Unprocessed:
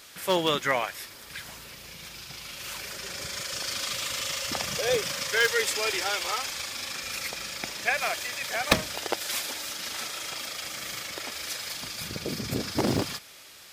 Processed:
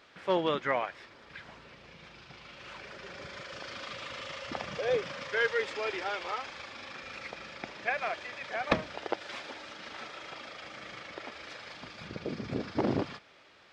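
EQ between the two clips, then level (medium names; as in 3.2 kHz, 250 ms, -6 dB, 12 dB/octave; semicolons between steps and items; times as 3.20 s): distance through air 53 m; tape spacing loss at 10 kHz 29 dB; bass shelf 150 Hz -9 dB; 0.0 dB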